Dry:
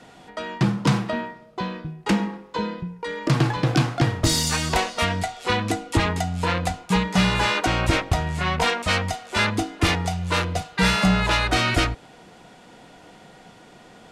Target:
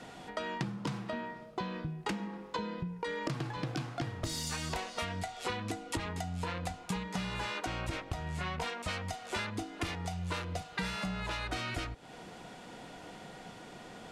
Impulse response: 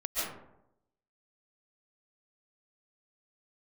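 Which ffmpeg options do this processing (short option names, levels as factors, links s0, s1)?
-af "acompressor=threshold=0.0251:ratio=16,volume=0.891"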